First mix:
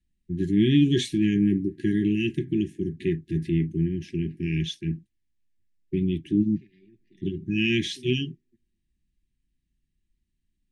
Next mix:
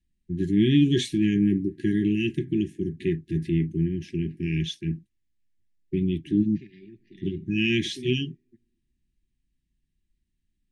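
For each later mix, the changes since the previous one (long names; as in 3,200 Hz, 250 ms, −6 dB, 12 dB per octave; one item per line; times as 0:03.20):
second voice +9.0 dB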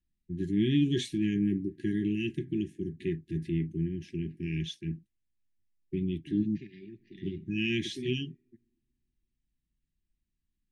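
first voice −6.5 dB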